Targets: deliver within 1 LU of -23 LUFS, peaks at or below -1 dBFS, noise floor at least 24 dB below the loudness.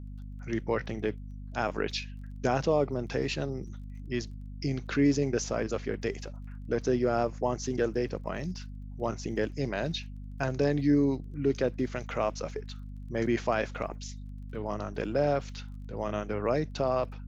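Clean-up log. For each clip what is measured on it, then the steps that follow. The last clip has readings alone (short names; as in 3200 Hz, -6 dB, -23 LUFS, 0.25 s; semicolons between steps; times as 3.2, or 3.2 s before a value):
ticks 20/s; hum 50 Hz; harmonics up to 250 Hz; hum level -39 dBFS; loudness -31.0 LUFS; peak -14.0 dBFS; loudness target -23.0 LUFS
-> de-click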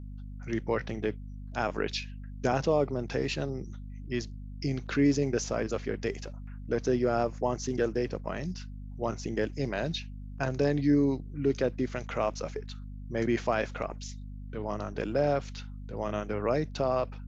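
ticks 0/s; hum 50 Hz; harmonics up to 250 Hz; hum level -39 dBFS
-> de-hum 50 Hz, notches 5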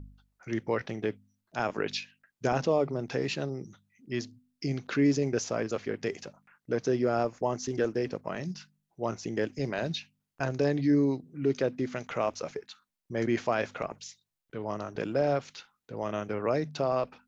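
hum none; loudness -31.0 LUFS; peak -15.0 dBFS; loudness target -23.0 LUFS
-> gain +8 dB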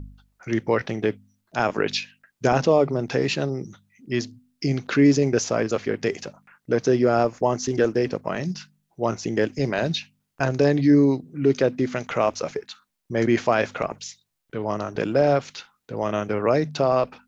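loudness -23.0 LUFS; peak -7.0 dBFS; noise floor -76 dBFS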